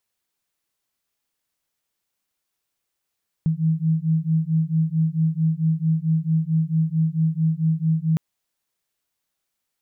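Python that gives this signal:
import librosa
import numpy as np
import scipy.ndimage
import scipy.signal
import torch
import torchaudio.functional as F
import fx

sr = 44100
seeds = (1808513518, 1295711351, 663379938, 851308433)

y = fx.two_tone_beats(sr, length_s=4.71, hz=158.0, beat_hz=4.5, level_db=-21.0)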